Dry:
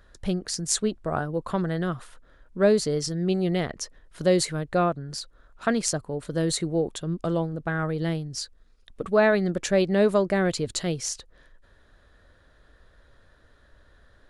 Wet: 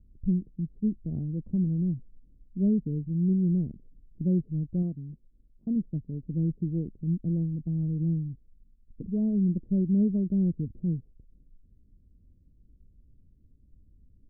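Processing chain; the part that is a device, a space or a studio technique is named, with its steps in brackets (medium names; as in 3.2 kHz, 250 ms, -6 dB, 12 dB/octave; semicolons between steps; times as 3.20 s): local Wiener filter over 25 samples; 4.82–5.76 s: bass shelf 210 Hz -5.5 dB; the neighbour's flat through the wall (low-pass 270 Hz 24 dB/octave; peaking EQ 190 Hz +3 dB)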